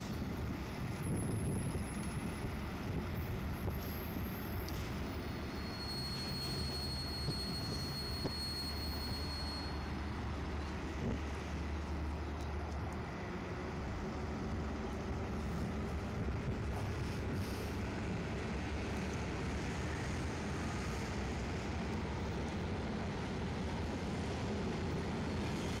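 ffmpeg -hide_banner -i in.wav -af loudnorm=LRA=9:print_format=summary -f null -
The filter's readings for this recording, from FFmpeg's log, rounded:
Input Integrated:    -40.3 LUFS
Input True Peak:     -31.0 dBTP
Input LRA:             1.9 LU
Input Threshold:     -50.3 LUFS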